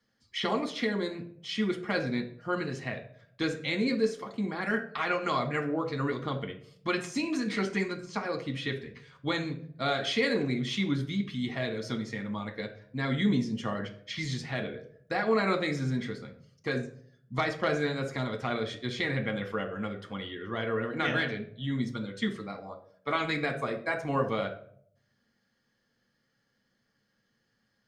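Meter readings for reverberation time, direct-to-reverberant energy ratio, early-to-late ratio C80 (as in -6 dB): 0.60 s, 3.5 dB, 15.5 dB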